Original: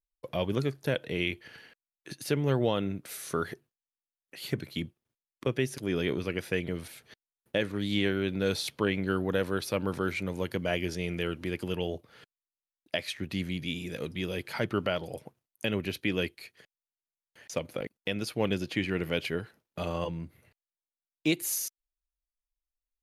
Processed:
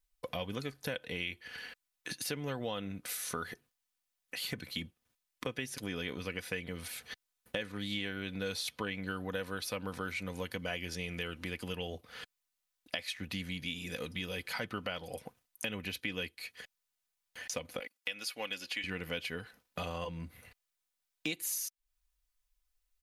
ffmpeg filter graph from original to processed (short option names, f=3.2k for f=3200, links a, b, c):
-filter_complex "[0:a]asettb=1/sr,asplit=3[a][b][c];[a]atrim=end=17.794[d];[b]atrim=start=17.79:end=18.84,asetpts=PTS-STARTPTS,afade=t=in:d=0.004:c=qsin,afade=t=out:st=1.046:d=0.004:c=qsin,highpass=f=1.2k:p=1,aecho=1:1:3.6:0.36,atrim=end_sample=46305[e];[c]atrim=start=18.836[f];[d][e]acrossfade=d=0.004:c1=hsin:c2=qsin[g];[g][f]acrossfade=d=0.004:c1=qsin:c2=hsin,equalizer=f=300:w=0.57:g=-8.5,aecho=1:1:4:0.48,acompressor=threshold=-48dB:ratio=3,volume=9dB"